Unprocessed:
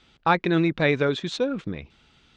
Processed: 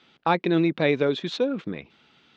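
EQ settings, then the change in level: BPF 180–4600 Hz; dynamic EQ 1500 Hz, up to -7 dB, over -37 dBFS, Q 1.1; +1.5 dB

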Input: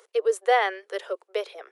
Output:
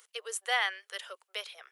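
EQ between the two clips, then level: HPF 1300 Hz 12 dB/oct; bell 3000 Hz +4.5 dB 0.24 oct; high shelf 6300 Hz +9.5 dB; -2.5 dB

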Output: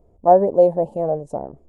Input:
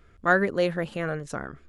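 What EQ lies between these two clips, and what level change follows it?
dynamic EQ 780 Hz, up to +8 dB, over -37 dBFS, Q 1.1; EQ curve 120 Hz 0 dB, 410 Hz +4 dB, 610 Hz +9 dB, 910 Hz +4 dB, 1400 Hz -28 dB, 3800 Hz -22 dB, 8100 Hz -8 dB; 0.0 dB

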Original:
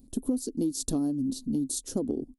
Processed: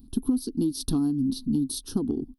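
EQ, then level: fixed phaser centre 2100 Hz, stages 6; +6.5 dB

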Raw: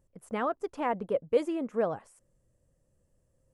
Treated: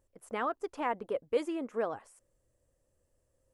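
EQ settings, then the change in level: low shelf 130 Hz -4.5 dB; bell 170 Hz -11.5 dB 0.8 oct; dynamic EQ 580 Hz, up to -5 dB, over -38 dBFS, Q 1.8; 0.0 dB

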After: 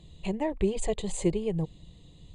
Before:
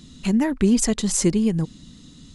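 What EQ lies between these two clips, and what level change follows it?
running mean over 8 samples; fixed phaser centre 590 Hz, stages 4; 0.0 dB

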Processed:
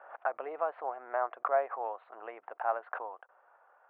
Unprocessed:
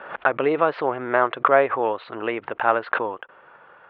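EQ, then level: ladder band-pass 800 Hz, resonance 75%; air absorption 160 m; bell 800 Hz -8.5 dB 0.62 oct; 0.0 dB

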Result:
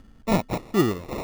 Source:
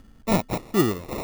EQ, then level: high shelf 8400 Hz -7.5 dB; 0.0 dB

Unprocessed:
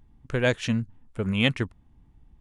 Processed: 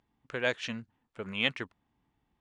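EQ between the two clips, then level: HPF 680 Hz 6 dB/oct; LPF 5400 Hz 12 dB/oct; -3.0 dB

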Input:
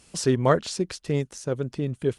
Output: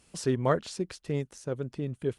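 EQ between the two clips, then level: bell 5800 Hz -3.5 dB 1.5 oct; -5.5 dB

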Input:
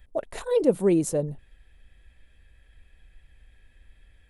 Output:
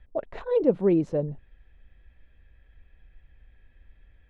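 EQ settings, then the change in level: air absorption 220 m; high shelf 4700 Hz -10.5 dB; 0.0 dB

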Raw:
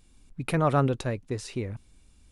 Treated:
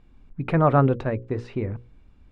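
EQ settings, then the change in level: LPF 1800 Hz 12 dB/oct; notches 60/120/180/240/300/360/420/480/540 Hz; +5.5 dB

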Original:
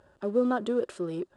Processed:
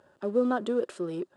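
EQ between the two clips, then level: HPF 140 Hz 12 dB/oct; 0.0 dB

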